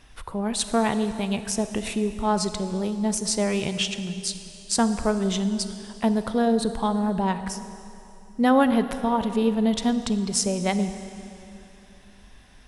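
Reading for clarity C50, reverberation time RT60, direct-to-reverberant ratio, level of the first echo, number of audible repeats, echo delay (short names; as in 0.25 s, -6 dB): 10.5 dB, 2.9 s, 10.0 dB, none, none, none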